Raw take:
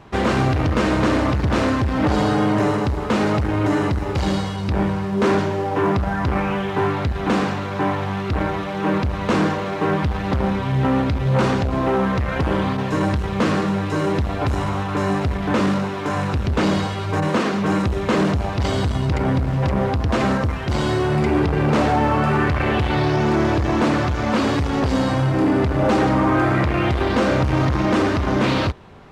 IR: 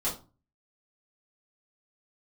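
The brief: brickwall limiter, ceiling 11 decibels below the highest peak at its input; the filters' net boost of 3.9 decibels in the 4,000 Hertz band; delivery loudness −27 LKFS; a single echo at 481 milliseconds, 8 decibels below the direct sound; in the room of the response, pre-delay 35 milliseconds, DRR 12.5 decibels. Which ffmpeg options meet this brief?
-filter_complex "[0:a]equalizer=frequency=4000:width_type=o:gain=5,alimiter=limit=-16dB:level=0:latency=1,aecho=1:1:481:0.398,asplit=2[link_01][link_02];[1:a]atrim=start_sample=2205,adelay=35[link_03];[link_02][link_03]afir=irnorm=-1:irlink=0,volume=-19dB[link_04];[link_01][link_04]amix=inputs=2:normalize=0,volume=-3dB"

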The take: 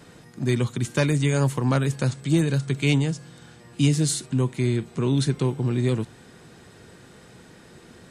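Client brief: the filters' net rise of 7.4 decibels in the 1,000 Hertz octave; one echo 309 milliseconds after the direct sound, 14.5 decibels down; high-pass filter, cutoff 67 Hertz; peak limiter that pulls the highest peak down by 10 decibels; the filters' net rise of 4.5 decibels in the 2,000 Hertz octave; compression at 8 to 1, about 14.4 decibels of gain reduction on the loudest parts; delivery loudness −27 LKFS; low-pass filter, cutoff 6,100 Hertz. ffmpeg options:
ffmpeg -i in.wav -af "highpass=67,lowpass=6100,equalizer=frequency=1000:width_type=o:gain=8,equalizer=frequency=2000:width_type=o:gain=3.5,acompressor=threshold=-30dB:ratio=8,alimiter=level_in=2.5dB:limit=-24dB:level=0:latency=1,volume=-2.5dB,aecho=1:1:309:0.188,volume=10.5dB" out.wav

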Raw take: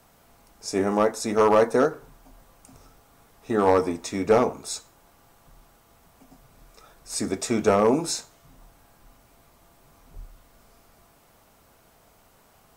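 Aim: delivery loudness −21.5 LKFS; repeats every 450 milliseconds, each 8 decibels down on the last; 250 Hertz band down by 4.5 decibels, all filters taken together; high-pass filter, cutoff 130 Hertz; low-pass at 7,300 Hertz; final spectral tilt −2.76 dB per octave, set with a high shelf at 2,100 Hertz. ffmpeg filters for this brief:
ffmpeg -i in.wav -af "highpass=130,lowpass=7300,equalizer=frequency=250:width_type=o:gain=-5.5,highshelf=frequency=2100:gain=7.5,aecho=1:1:450|900|1350|1800|2250:0.398|0.159|0.0637|0.0255|0.0102,volume=2.5dB" out.wav

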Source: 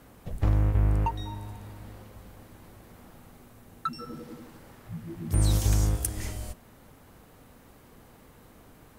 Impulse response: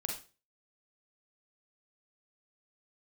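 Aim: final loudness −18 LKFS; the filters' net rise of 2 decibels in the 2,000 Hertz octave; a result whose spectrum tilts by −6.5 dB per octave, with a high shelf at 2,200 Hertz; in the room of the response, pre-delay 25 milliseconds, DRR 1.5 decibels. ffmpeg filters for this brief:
-filter_complex "[0:a]equalizer=frequency=2000:width_type=o:gain=7,highshelf=frequency=2200:gain=-8.5,asplit=2[link_01][link_02];[1:a]atrim=start_sample=2205,adelay=25[link_03];[link_02][link_03]afir=irnorm=-1:irlink=0,volume=-3dB[link_04];[link_01][link_04]amix=inputs=2:normalize=0,volume=10.5dB"

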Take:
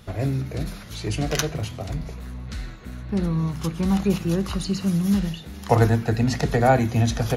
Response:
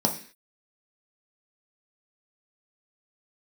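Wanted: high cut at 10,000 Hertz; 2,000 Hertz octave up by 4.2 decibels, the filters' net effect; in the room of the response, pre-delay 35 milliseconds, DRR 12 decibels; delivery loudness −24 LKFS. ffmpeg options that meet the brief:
-filter_complex "[0:a]lowpass=10000,equalizer=frequency=2000:width_type=o:gain=5.5,asplit=2[link_01][link_02];[1:a]atrim=start_sample=2205,adelay=35[link_03];[link_02][link_03]afir=irnorm=-1:irlink=0,volume=-23dB[link_04];[link_01][link_04]amix=inputs=2:normalize=0,volume=-1.5dB"

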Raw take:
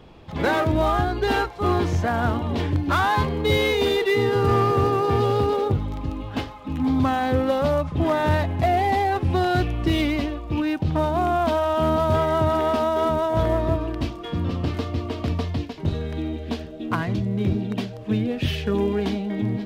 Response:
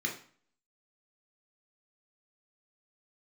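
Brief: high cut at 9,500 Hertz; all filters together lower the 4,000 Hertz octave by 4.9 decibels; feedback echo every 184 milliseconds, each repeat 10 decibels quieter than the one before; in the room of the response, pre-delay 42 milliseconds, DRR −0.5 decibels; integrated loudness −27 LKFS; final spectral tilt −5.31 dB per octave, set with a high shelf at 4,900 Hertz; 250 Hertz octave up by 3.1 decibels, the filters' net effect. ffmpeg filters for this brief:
-filter_complex "[0:a]lowpass=9500,equalizer=frequency=250:width_type=o:gain=4,equalizer=frequency=4000:width_type=o:gain=-4,highshelf=frequency=4900:gain=-5.5,aecho=1:1:184|368|552|736:0.316|0.101|0.0324|0.0104,asplit=2[link_01][link_02];[1:a]atrim=start_sample=2205,adelay=42[link_03];[link_02][link_03]afir=irnorm=-1:irlink=0,volume=-4.5dB[link_04];[link_01][link_04]amix=inputs=2:normalize=0,volume=-10dB"

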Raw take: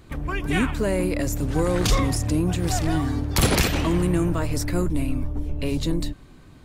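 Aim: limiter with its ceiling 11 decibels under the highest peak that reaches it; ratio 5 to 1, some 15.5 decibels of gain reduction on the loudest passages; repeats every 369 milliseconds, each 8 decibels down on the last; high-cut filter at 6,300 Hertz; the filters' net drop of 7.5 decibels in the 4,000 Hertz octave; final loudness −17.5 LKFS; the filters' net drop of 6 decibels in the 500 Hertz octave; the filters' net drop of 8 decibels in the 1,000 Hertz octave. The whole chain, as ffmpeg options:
ffmpeg -i in.wav -af "lowpass=6300,equalizer=frequency=500:width_type=o:gain=-6.5,equalizer=frequency=1000:width_type=o:gain=-8,equalizer=frequency=4000:width_type=o:gain=-8.5,acompressor=threshold=-34dB:ratio=5,alimiter=level_in=10.5dB:limit=-24dB:level=0:latency=1,volume=-10.5dB,aecho=1:1:369|738|1107|1476|1845:0.398|0.159|0.0637|0.0255|0.0102,volume=25dB" out.wav

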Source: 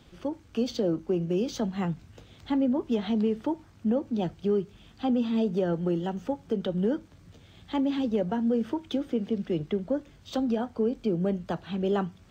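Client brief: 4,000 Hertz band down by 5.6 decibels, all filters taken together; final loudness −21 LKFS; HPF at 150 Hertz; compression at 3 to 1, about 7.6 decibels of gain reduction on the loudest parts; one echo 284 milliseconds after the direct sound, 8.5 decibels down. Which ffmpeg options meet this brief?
ffmpeg -i in.wav -af "highpass=150,equalizer=frequency=4000:width_type=o:gain=-7.5,acompressor=threshold=-33dB:ratio=3,aecho=1:1:284:0.376,volume=15dB" out.wav

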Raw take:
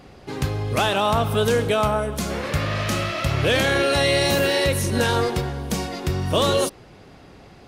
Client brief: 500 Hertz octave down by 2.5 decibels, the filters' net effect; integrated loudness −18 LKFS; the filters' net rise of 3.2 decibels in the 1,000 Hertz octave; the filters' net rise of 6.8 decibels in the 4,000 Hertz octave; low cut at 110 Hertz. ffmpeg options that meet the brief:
ffmpeg -i in.wav -af "highpass=110,equalizer=frequency=500:width_type=o:gain=-4.5,equalizer=frequency=1000:width_type=o:gain=5,equalizer=frequency=4000:width_type=o:gain=8,volume=1.5dB" out.wav

